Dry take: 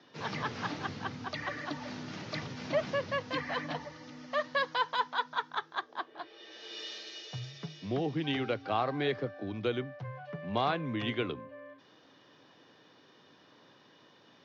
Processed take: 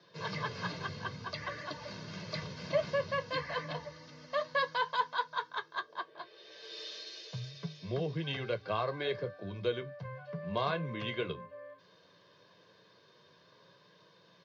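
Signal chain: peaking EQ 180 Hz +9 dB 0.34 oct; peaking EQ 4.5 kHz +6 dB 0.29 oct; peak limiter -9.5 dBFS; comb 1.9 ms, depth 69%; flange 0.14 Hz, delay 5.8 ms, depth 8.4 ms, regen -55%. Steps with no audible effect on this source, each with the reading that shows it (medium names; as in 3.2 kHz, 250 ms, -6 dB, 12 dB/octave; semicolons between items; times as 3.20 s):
peak limiter -9.5 dBFS: peak at its input -16.0 dBFS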